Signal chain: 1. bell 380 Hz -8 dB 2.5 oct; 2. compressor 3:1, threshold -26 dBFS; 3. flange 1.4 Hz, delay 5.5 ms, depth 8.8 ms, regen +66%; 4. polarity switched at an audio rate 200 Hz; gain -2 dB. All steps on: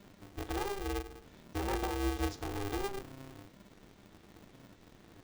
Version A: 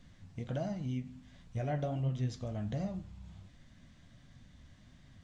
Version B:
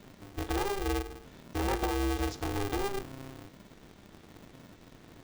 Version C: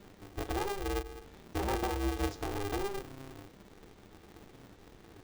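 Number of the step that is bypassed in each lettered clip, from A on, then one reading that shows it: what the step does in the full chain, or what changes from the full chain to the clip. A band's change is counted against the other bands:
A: 4, momentary loudness spread change -5 LU; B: 3, loudness change +4.0 LU; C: 1, loudness change +1.5 LU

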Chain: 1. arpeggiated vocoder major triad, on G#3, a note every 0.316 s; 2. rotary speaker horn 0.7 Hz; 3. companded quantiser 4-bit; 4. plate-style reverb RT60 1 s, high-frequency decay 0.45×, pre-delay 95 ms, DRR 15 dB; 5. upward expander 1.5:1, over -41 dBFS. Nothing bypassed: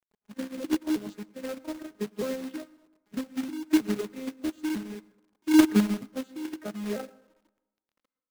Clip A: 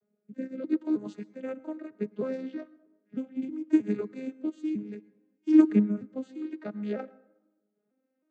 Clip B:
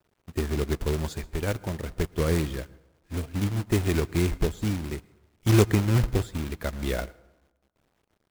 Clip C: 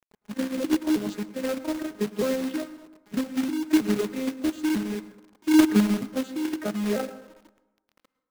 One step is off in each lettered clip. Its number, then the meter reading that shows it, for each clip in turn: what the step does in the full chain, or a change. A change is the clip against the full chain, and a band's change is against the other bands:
3, distortion -14 dB; 1, 125 Hz band +13.5 dB; 5, crest factor change -3.5 dB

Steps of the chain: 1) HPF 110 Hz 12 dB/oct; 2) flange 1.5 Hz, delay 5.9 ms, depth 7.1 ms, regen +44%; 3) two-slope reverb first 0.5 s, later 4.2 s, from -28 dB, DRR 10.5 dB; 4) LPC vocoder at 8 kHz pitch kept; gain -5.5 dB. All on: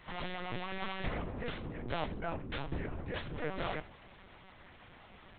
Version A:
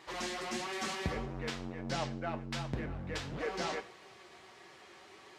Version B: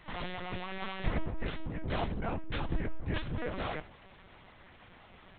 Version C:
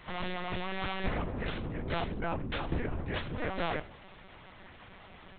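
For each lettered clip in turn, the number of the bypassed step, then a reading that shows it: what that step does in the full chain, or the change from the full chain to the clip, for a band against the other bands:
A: 4, 4 kHz band +3.0 dB; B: 1, 125 Hz band +3.5 dB; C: 2, loudness change +4.0 LU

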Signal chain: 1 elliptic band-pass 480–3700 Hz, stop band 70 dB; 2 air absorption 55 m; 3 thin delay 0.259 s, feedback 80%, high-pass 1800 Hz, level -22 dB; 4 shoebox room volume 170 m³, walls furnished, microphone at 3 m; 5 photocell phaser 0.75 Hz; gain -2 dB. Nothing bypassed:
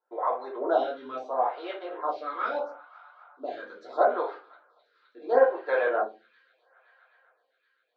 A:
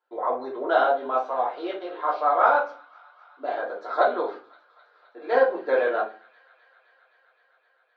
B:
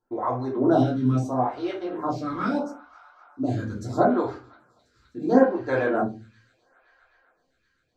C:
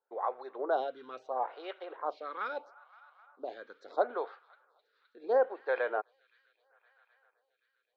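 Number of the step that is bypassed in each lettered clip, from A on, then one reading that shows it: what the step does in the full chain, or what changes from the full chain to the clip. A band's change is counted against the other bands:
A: 5, 500 Hz band -3.0 dB; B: 1, 250 Hz band +18.0 dB; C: 4, 250 Hz band -2.0 dB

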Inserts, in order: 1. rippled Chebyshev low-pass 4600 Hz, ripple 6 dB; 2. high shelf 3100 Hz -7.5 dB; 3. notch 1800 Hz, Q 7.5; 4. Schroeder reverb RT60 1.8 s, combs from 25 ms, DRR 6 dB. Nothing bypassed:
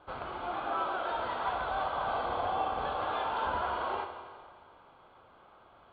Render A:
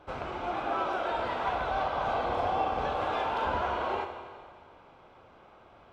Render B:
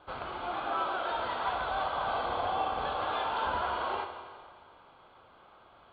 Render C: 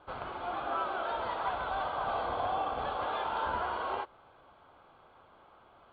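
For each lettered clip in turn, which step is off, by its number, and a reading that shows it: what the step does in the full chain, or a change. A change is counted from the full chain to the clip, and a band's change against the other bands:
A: 1, 125 Hz band +3.5 dB; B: 2, 4 kHz band +3.5 dB; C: 4, momentary loudness spread change -3 LU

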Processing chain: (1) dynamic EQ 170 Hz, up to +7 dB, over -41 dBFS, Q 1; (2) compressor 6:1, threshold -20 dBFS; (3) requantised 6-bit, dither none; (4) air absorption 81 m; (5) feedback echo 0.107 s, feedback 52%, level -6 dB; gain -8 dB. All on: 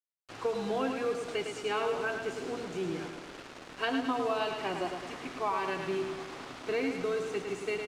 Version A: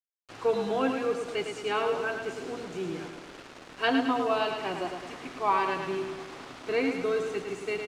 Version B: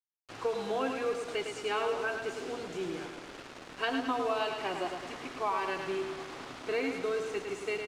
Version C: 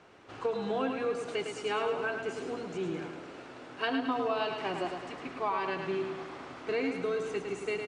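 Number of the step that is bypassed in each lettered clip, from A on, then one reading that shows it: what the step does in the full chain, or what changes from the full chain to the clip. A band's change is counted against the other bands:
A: 2, crest factor change +2.5 dB; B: 1, 125 Hz band -5.0 dB; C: 3, distortion -14 dB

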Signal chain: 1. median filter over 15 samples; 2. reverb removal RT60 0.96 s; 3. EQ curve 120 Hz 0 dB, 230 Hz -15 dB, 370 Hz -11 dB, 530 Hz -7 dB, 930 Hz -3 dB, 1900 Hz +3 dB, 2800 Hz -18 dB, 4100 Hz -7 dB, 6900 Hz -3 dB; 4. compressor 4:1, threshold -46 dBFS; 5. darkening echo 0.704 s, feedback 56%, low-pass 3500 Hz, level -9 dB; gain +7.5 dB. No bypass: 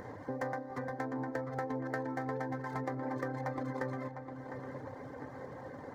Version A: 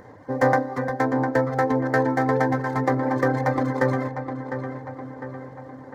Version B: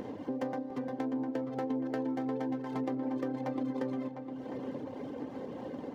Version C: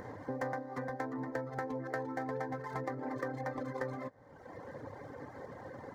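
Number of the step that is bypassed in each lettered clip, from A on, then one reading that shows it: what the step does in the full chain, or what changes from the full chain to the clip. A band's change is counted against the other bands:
4, mean gain reduction 9.5 dB; 3, 250 Hz band +10.0 dB; 5, 125 Hz band -2.5 dB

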